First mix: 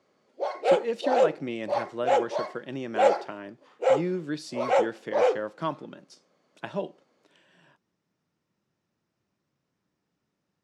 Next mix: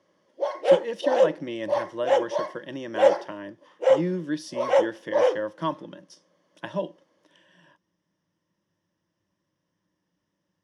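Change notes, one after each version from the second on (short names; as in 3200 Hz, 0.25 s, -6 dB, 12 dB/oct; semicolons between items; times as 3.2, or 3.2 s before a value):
master: add ripple EQ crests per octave 1.2, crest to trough 9 dB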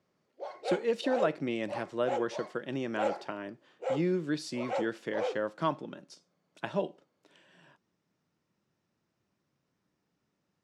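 background -11.0 dB; master: remove ripple EQ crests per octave 1.2, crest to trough 9 dB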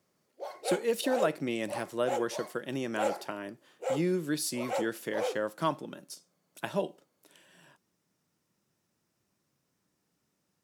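master: remove air absorption 120 m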